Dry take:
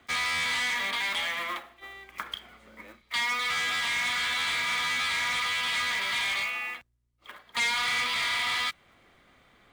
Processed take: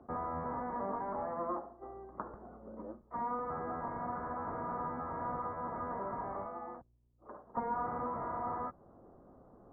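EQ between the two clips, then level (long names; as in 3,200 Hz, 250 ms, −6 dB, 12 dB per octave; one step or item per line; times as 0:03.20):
Gaussian smoothing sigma 11 samples
high-frequency loss of the air 360 metres
low-shelf EQ 220 Hz −10 dB
+12.0 dB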